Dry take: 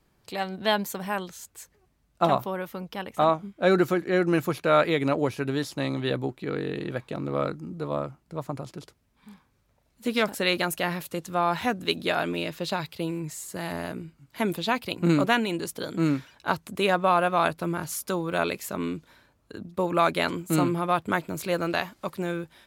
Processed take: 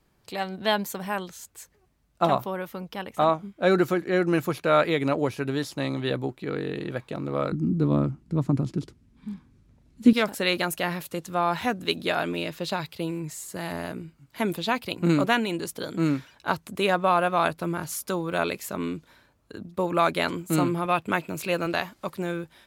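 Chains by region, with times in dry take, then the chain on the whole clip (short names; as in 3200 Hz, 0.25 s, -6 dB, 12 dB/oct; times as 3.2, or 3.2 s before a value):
7.52–10.13 LPF 10000 Hz + resonant low shelf 410 Hz +11 dB, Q 1.5
20.85–21.66 HPF 86 Hz + bell 2600 Hz +10 dB 0.22 oct
whole clip: dry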